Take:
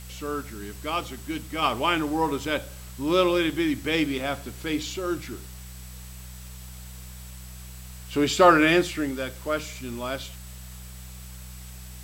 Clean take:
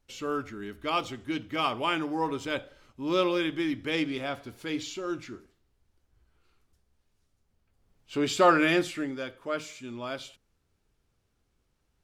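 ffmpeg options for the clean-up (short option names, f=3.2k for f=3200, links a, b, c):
-af "bandreject=f=62.5:t=h:w=4,bandreject=f=125:t=h:w=4,bandreject=f=187.5:t=h:w=4,bandreject=f=7.8k:w=30,afwtdn=0.0045,asetnsamples=n=441:p=0,asendcmd='1.62 volume volume -4.5dB',volume=0dB"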